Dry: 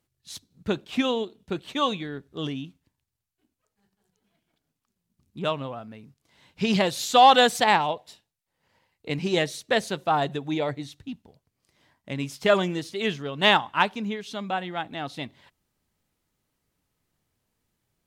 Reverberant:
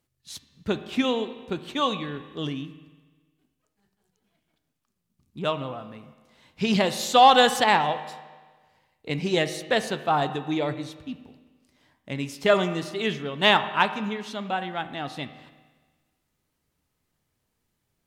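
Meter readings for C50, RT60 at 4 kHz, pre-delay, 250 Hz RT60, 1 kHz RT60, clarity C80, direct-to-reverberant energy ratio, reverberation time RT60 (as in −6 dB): 12.0 dB, 1.4 s, 5 ms, 1.4 s, 1.4 s, 13.0 dB, 9.5 dB, 1.4 s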